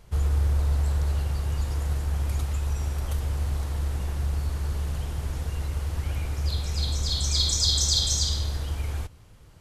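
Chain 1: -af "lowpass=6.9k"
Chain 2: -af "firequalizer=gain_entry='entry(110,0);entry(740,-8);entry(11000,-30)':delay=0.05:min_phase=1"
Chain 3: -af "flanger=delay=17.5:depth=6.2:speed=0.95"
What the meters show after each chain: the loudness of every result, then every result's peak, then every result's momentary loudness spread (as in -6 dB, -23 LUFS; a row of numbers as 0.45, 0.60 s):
-27.5, -29.0, -31.0 LUFS; -11.0, -15.5, -13.0 dBFS; 9, 6, 12 LU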